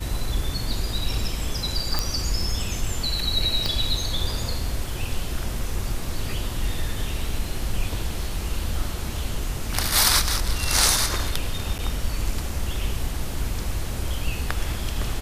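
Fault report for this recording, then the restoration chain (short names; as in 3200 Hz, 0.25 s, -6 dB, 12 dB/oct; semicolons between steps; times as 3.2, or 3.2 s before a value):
1.99 pop
3.66 pop -12 dBFS
11.78–11.79 gap 9 ms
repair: de-click; interpolate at 11.78, 9 ms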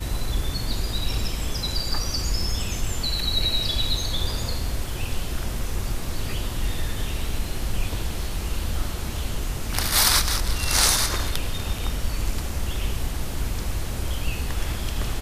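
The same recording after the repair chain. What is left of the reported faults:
3.66 pop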